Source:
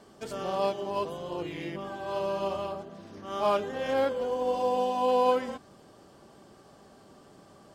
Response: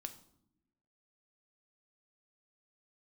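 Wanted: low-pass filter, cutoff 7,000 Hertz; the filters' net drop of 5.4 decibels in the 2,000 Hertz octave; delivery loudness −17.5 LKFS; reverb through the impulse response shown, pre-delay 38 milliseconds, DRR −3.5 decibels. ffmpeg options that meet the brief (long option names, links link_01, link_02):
-filter_complex "[0:a]lowpass=7000,equalizer=frequency=2000:width_type=o:gain=-7.5,asplit=2[link_01][link_02];[1:a]atrim=start_sample=2205,adelay=38[link_03];[link_02][link_03]afir=irnorm=-1:irlink=0,volume=7dB[link_04];[link_01][link_04]amix=inputs=2:normalize=0,volume=8dB"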